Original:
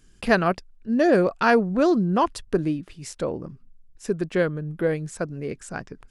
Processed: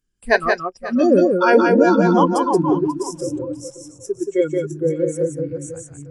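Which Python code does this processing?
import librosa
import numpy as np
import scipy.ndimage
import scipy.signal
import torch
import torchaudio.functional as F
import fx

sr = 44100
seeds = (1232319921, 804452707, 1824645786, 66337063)

y = fx.reverse_delay_fb(x, sr, ms=337, feedback_pct=50, wet_db=-3.5)
y = fx.noise_reduce_blind(y, sr, reduce_db=24)
y = fx.echo_multitap(y, sr, ms=(177, 538), db=(-4.0, -15.5))
y = y * librosa.db_to_amplitude(4.0)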